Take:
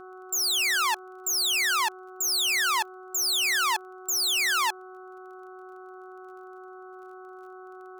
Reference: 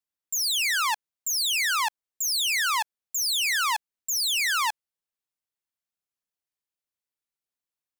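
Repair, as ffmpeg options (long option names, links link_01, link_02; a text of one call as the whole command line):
ffmpeg -i in.wav -af "adeclick=threshold=4,bandreject=frequency=371.5:width_type=h:width=4,bandreject=frequency=743:width_type=h:width=4,bandreject=frequency=1114.5:width_type=h:width=4,bandreject=frequency=1486:width_type=h:width=4,bandreject=frequency=1300:width=30" out.wav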